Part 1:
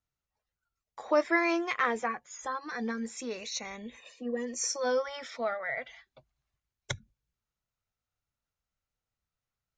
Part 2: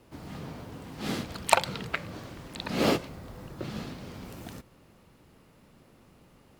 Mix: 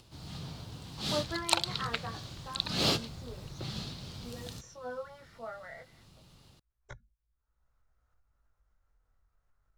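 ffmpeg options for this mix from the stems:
-filter_complex "[0:a]highshelf=f=2000:t=q:w=1.5:g=-9.5,flanger=delay=16:depth=6.1:speed=0.27,asubboost=boost=7:cutoff=54,volume=0.398[s0];[1:a]equalizer=f=125:t=o:w=1:g=3,equalizer=f=250:t=o:w=1:g=-8,equalizer=f=500:t=o:w=1:g=-7,equalizer=f=1000:t=o:w=1:g=-3,equalizer=f=2000:t=o:w=1:g=-8,equalizer=f=4000:t=o:w=1:g=10,equalizer=f=8000:t=o:w=1:g=3,dynaudnorm=f=110:g=3:m=1.5,volume=0.668[s1];[s0][s1]amix=inputs=2:normalize=0,highshelf=f=8500:g=-5.5,acompressor=mode=upward:threshold=0.00224:ratio=2.5"

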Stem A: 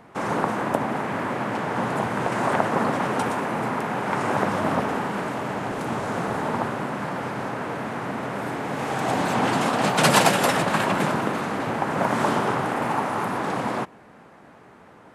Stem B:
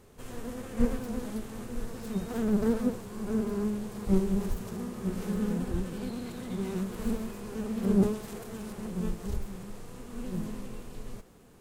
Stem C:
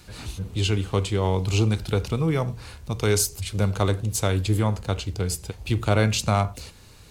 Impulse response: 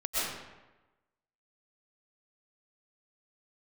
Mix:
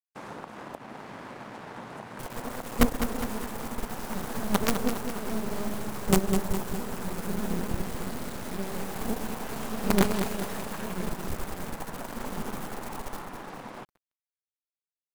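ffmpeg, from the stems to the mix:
-filter_complex "[0:a]acompressor=threshold=0.0631:ratio=6,volume=0.299[s0];[1:a]highshelf=f=11000:g=11.5,acrusher=bits=4:dc=4:mix=0:aa=0.000001,adelay=2000,volume=1.26,asplit=2[s1][s2];[s2]volume=0.422,aecho=0:1:205|410|615|820|1025|1230|1435|1640|1845:1|0.57|0.325|0.185|0.106|0.0602|0.0343|0.0195|0.0111[s3];[s0][s1][s3]amix=inputs=3:normalize=0,aeval=exprs='sgn(val(0))*max(abs(val(0))-0.00473,0)':c=same"

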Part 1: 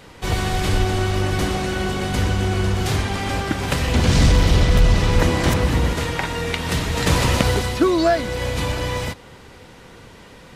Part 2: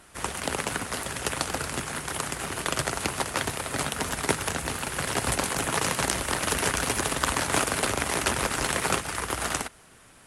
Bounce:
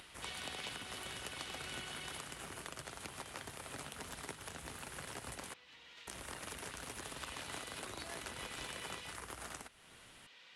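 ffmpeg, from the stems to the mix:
-filter_complex "[0:a]alimiter=limit=0.211:level=0:latency=1:release=256,bandpass=f=3100:t=q:w=1.6:csg=0,volume=0.708,afade=t=out:st=1.89:d=0.62:silence=0.251189,afade=t=in:st=7:d=0.52:silence=0.375837[s0];[1:a]acompressor=threshold=0.0316:ratio=5,volume=0.211,asplit=3[s1][s2][s3];[s1]atrim=end=5.54,asetpts=PTS-STARTPTS,afade=t=out:st=5.536:d=0.004:c=hsin[s4];[s2]atrim=start=5.54:end=6.07,asetpts=PTS-STARTPTS,volume=0[s5];[s3]atrim=start=6.07,asetpts=PTS-STARTPTS,afade=t=in:d=0.004:c=hsin[s6];[s4][s5][s6]concat=n=3:v=0:a=1[s7];[s0][s7]amix=inputs=2:normalize=0,acompressor=mode=upward:threshold=0.00316:ratio=2.5"

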